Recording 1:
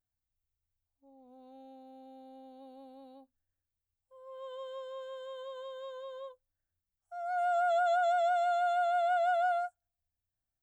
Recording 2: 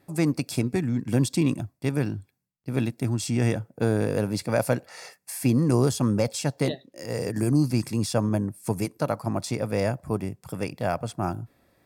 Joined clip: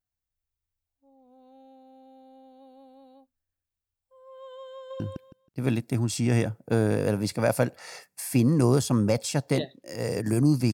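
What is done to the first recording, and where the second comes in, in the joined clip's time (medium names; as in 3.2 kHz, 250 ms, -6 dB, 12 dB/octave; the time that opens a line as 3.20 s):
recording 1
4.74–5.00 s: echo throw 160 ms, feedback 20%, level 0 dB
5.00 s: go over to recording 2 from 2.10 s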